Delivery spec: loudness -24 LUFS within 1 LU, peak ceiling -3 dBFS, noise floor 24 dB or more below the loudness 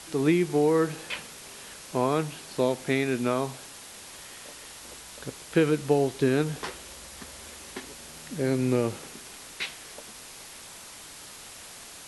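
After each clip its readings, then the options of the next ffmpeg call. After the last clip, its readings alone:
noise floor -45 dBFS; noise floor target -51 dBFS; loudness -27.0 LUFS; peak -10.0 dBFS; loudness target -24.0 LUFS
-> -af "afftdn=nr=6:nf=-45"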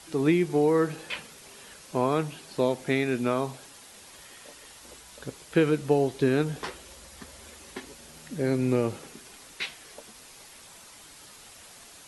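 noise floor -50 dBFS; noise floor target -51 dBFS
-> -af "afftdn=nr=6:nf=-50"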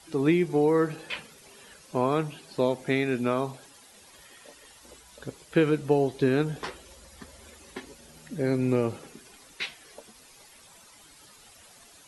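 noise floor -54 dBFS; loudness -27.0 LUFS; peak -10.0 dBFS; loudness target -24.0 LUFS
-> -af "volume=3dB"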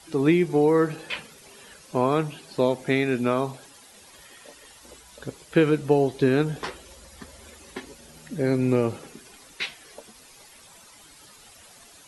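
loudness -24.0 LUFS; peak -7.0 dBFS; noise floor -51 dBFS

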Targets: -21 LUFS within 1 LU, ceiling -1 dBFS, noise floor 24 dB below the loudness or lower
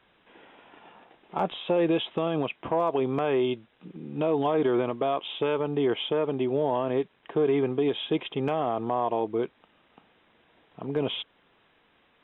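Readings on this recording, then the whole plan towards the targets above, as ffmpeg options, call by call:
loudness -27.5 LUFS; peak -16.0 dBFS; loudness target -21.0 LUFS
-> -af "volume=6.5dB"

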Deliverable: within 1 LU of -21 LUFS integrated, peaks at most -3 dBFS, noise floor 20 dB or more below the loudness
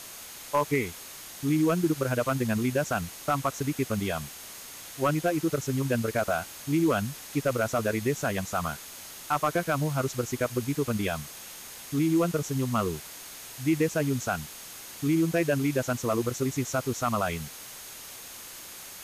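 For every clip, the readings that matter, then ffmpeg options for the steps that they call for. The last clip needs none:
steady tone 6500 Hz; tone level -52 dBFS; noise floor -44 dBFS; noise floor target -49 dBFS; loudness -28.5 LUFS; peak -15.0 dBFS; loudness target -21.0 LUFS
-> -af "bandreject=f=6.5k:w=30"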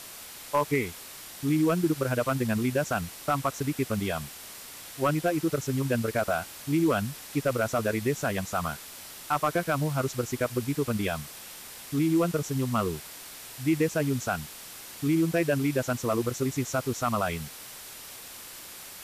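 steady tone none; noise floor -44 dBFS; noise floor target -49 dBFS
-> -af "afftdn=nr=6:nf=-44"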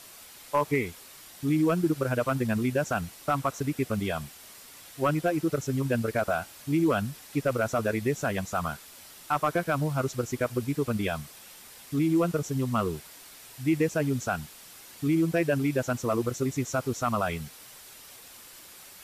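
noise floor -49 dBFS; loudness -28.5 LUFS; peak -15.0 dBFS; loudness target -21.0 LUFS
-> -af "volume=7.5dB"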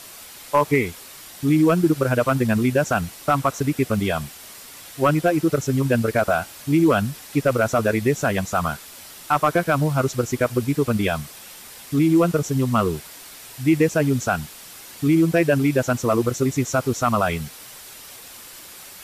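loudness -21.0 LUFS; peak -7.5 dBFS; noise floor -42 dBFS

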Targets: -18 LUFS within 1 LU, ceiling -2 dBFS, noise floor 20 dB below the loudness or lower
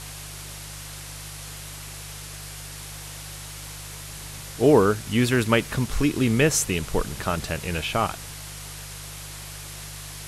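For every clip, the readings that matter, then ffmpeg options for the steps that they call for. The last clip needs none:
hum 50 Hz; harmonics up to 150 Hz; hum level -40 dBFS; noise floor -38 dBFS; noise floor target -46 dBFS; loudness -26.0 LUFS; peak -5.5 dBFS; loudness target -18.0 LUFS
-> -af "bandreject=f=50:t=h:w=4,bandreject=f=100:t=h:w=4,bandreject=f=150:t=h:w=4"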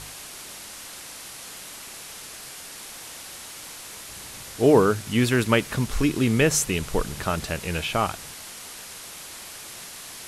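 hum none; noise floor -41 dBFS; noise floor target -43 dBFS
-> -af "afftdn=nr=6:nf=-41"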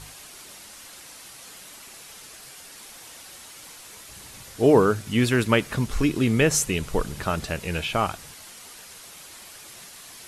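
noise floor -45 dBFS; loudness -23.0 LUFS; peak -5.5 dBFS; loudness target -18.0 LUFS
-> -af "volume=5dB,alimiter=limit=-2dB:level=0:latency=1"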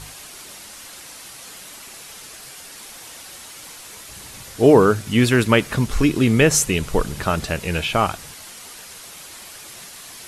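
loudness -18.0 LUFS; peak -2.0 dBFS; noise floor -40 dBFS

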